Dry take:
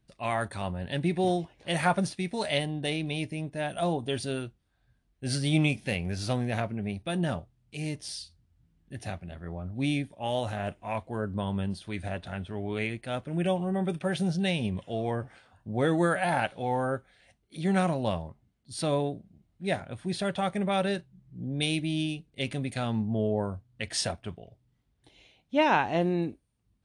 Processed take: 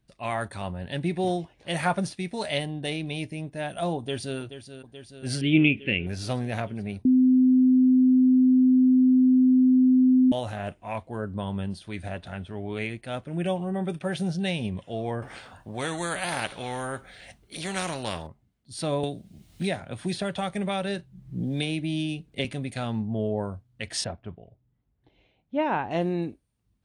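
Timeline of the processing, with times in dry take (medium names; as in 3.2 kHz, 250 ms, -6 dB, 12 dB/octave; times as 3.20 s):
3.97–4.39 s: echo throw 430 ms, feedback 75%, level -11 dB
5.41–6.07 s: FFT filter 160 Hz 0 dB, 340 Hz +9 dB, 520 Hz -2 dB, 800 Hz -12 dB, 2.9 kHz +10 dB, 4.9 kHz -26 dB
7.05–10.32 s: bleep 256 Hz -15 dBFS
15.22–18.27 s: spectrum-flattening compressor 2:1
19.03–22.45 s: three bands compressed up and down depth 100%
24.04–25.91 s: tape spacing loss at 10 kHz 33 dB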